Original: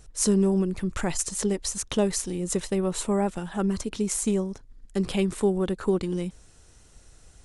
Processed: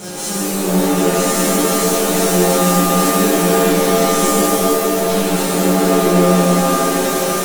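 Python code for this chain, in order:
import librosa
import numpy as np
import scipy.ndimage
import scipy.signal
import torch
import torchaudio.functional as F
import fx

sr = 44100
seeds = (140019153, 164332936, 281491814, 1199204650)

p1 = fx.bin_compress(x, sr, power=0.4)
p2 = fx.over_compress(p1, sr, threshold_db=-25.0, ratio=-1.0)
p3 = p1 + (p2 * 10.0 ** (-1.5 / 20.0))
p4 = scipy.signal.sosfilt(scipy.signal.butter(4, 110.0, 'highpass', fs=sr, output='sos'), p3)
p5 = fx.fuzz(p4, sr, gain_db=24.0, gate_db=-31.0)
p6 = fx.comb_fb(p5, sr, f0_hz=180.0, decay_s=0.18, harmonics='all', damping=0.0, mix_pct=90)
p7 = fx.rev_shimmer(p6, sr, seeds[0], rt60_s=3.5, semitones=7, shimmer_db=-2, drr_db=-11.0)
y = p7 * 10.0 ** (-5.5 / 20.0)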